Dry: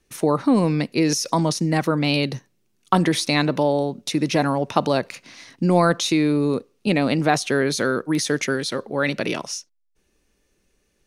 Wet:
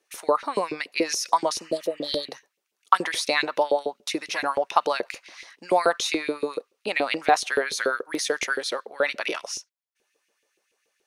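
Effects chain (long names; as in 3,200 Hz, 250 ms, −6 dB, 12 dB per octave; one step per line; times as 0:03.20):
healed spectral selection 0:01.58–0:02.25, 680–3,100 Hz
auto-filter high-pass saw up 7 Hz 380–2,900 Hz
level −3.5 dB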